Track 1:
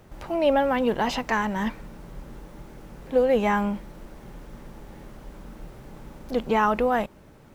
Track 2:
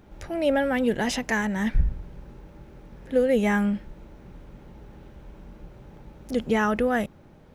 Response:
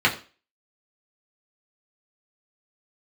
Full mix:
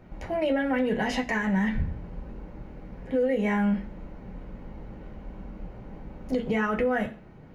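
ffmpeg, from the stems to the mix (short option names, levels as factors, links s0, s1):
-filter_complex "[0:a]lowpass=1100,lowshelf=f=330:g=6.5,alimiter=limit=0.106:level=0:latency=1,volume=0.562[s0];[1:a]volume=0.376,asplit=2[s1][s2];[s2]volume=0.355[s3];[2:a]atrim=start_sample=2205[s4];[s3][s4]afir=irnorm=-1:irlink=0[s5];[s0][s1][s5]amix=inputs=3:normalize=0,alimiter=limit=0.141:level=0:latency=1:release=202"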